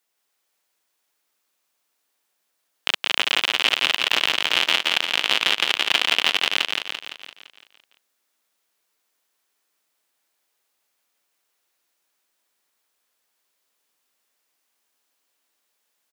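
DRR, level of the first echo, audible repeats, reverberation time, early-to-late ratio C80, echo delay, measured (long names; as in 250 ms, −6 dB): no reverb audible, −3.0 dB, 7, no reverb audible, no reverb audible, 170 ms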